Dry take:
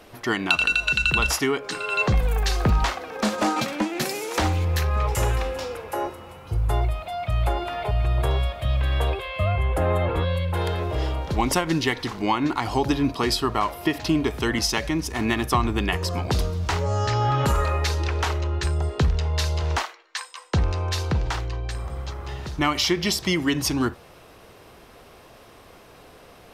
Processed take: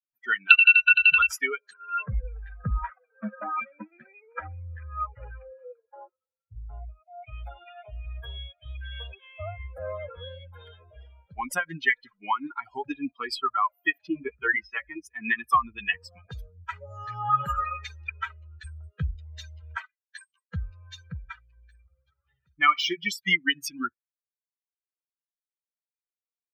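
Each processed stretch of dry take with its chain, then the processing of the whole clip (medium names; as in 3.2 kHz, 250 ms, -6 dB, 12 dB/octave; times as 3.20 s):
1.73–7.23 s: low-pass 2 kHz + tape noise reduction on one side only decoder only
14.07–15.00 s: low-pass 2.4 kHz + doubling 15 ms -3 dB
21.51–22.96 s: median filter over 3 samples + flutter echo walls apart 9.2 m, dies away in 0.31 s
whole clip: expander on every frequency bin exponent 3; high-order bell 1.8 kHz +15.5 dB; trim -4.5 dB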